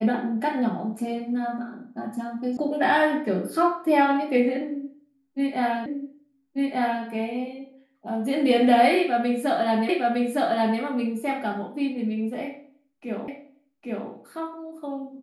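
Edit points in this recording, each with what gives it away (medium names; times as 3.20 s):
2.57 s: sound stops dead
5.86 s: repeat of the last 1.19 s
9.89 s: repeat of the last 0.91 s
13.28 s: repeat of the last 0.81 s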